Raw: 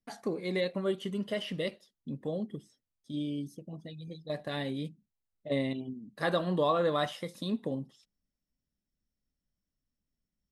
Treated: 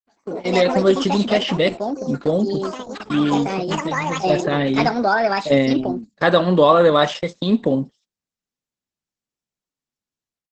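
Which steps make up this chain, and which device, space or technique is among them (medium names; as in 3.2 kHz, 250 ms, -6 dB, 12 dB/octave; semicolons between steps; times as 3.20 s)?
4.12–4.67 s: tone controls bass +2 dB, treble -15 dB; ever faster or slower copies 111 ms, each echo +5 st, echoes 3, each echo -6 dB; video call (high-pass 150 Hz 12 dB/octave; level rider gain up to 15 dB; gate -29 dBFS, range -21 dB; trim +2 dB; Opus 12 kbps 48 kHz)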